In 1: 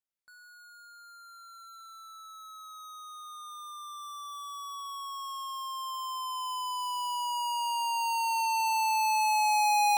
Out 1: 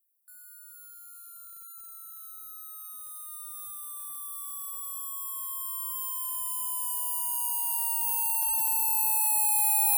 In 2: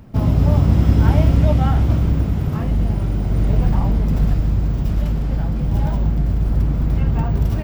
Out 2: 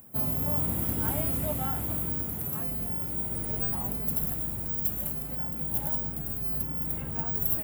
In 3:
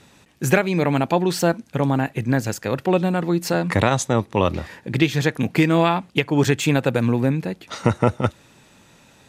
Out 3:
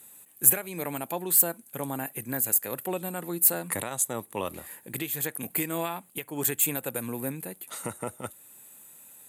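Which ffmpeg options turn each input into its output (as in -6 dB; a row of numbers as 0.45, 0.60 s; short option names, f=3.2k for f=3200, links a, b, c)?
-af "highpass=f=300:p=1,alimiter=limit=-9dB:level=0:latency=1:release=359,aexciter=amount=15.4:drive=8.8:freq=8.4k,volume=-10dB"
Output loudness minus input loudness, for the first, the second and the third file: +3.5, -10.0, -6.0 LU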